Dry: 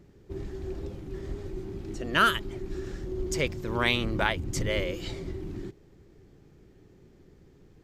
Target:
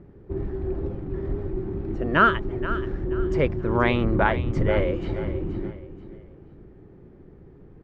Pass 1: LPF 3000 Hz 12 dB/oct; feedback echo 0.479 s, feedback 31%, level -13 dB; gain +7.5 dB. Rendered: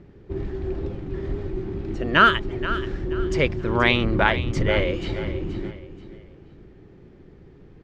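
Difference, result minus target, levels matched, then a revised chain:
4000 Hz band +9.0 dB
LPF 1400 Hz 12 dB/oct; feedback echo 0.479 s, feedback 31%, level -13 dB; gain +7.5 dB

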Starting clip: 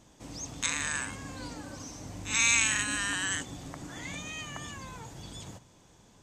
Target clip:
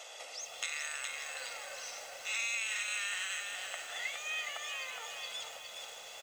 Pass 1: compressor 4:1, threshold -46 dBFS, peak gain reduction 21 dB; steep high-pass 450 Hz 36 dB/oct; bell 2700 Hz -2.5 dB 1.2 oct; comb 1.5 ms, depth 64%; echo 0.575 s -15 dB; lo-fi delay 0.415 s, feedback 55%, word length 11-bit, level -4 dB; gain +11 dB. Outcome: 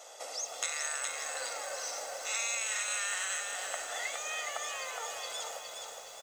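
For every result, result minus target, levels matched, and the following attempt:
compressor: peak gain reduction -8.5 dB; 2000 Hz band -2.5 dB
compressor 4:1, threshold -57.5 dBFS, peak gain reduction 29.5 dB; steep high-pass 450 Hz 36 dB/oct; bell 2700 Hz -2.5 dB 1.2 oct; comb 1.5 ms, depth 64%; echo 0.575 s -15 dB; lo-fi delay 0.415 s, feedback 55%, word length 11-bit, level -4 dB; gain +11 dB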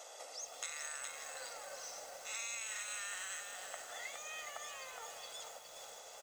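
2000 Hz band -3.0 dB
compressor 4:1, threshold -57.5 dBFS, peak gain reduction 29.5 dB; steep high-pass 450 Hz 36 dB/oct; bell 2700 Hz +9.5 dB 1.2 oct; comb 1.5 ms, depth 64%; echo 0.575 s -15 dB; lo-fi delay 0.415 s, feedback 55%, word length 11-bit, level -4 dB; gain +11 dB

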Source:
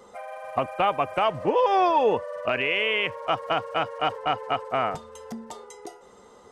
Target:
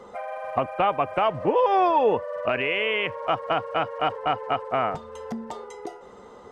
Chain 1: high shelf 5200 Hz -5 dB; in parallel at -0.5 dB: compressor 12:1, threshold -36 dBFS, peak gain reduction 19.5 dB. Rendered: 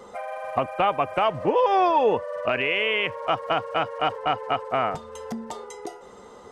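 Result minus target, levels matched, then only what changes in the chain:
8000 Hz band +6.0 dB
change: high shelf 5200 Hz -15.5 dB

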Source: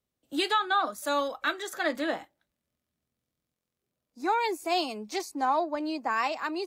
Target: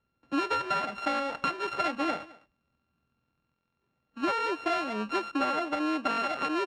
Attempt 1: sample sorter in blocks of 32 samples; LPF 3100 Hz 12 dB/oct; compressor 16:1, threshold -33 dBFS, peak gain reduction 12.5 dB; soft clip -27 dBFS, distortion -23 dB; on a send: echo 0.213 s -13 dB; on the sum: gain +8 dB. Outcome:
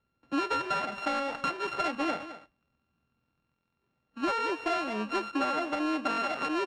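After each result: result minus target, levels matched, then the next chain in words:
soft clip: distortion +17 dB; echo-to-direct +8.5 dB
sample sorter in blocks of 32 samples; LPF 3100 Hz 12 dB/oct; compressor 16:1, threshold -33 dBFS, peak gain reduction 12.5 dB; soft clip -17.5 dBFS, distortion -39 dB; on a send: echo 0.213 s -13 dB; on the sum: gain +8 dB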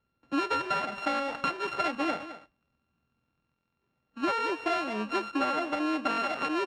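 echo-to-direct +8.5 dB
sample sorter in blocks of 32 samples; LPF 3100 Hz 12 dB/oct; compressor 16:1, threshold -33 dBFS, peak gain reduction 12.5 dB; soft clip -17.5 dBFS, distortion -39 dB; on a send: echo 0.213 s -21.5 dB; on the sum: gain +8 dB

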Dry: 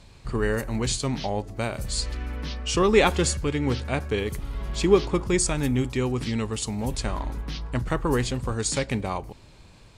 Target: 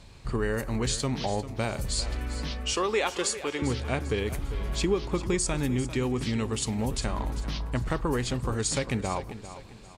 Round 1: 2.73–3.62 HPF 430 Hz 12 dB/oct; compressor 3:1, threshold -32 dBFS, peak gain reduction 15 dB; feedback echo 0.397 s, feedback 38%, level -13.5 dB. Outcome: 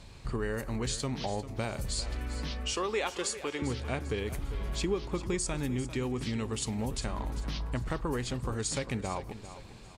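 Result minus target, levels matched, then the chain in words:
compressor: peak gain reduction +5 dB
2.73–3.62 HPF 430 Hz 12 dB/oct; compressor 3:1, threshold -24.5 dBFS, peak gain reduction 10 dB; feedback echo 0.397 s, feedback 38%, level -13.5 dB

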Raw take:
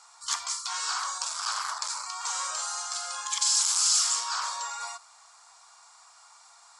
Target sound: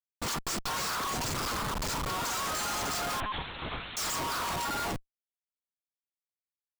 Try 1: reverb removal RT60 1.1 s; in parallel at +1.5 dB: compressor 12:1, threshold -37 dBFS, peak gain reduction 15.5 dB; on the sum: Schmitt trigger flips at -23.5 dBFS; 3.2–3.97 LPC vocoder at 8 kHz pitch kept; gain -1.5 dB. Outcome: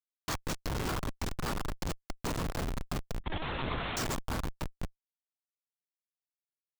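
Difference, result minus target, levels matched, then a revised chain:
Schmitt trigger: distortion +11 dB
reverb removal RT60 1.1 s; in parallel at +1.5 dB: compressor 12:1, threshold -37 dBFS, peak gain reduction 15.5 dB; on the sum: Schmitt trigger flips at -33 dBFS; 3.2–3.97 LPC vocoder at 8 kHz pitch kept; gain -1.5 dB

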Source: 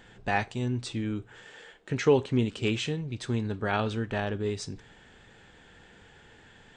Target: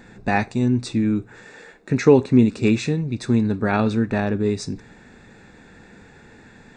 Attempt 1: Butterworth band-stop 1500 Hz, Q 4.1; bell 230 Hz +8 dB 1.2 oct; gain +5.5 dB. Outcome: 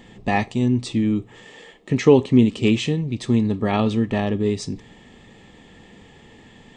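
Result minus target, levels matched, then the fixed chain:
4000 Hz band +4.5 dB
Butterworth band-stop 3100 Hz, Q 4.1; bell 230 Hz +8 dB 1.2 oct; gain +5.5 dB

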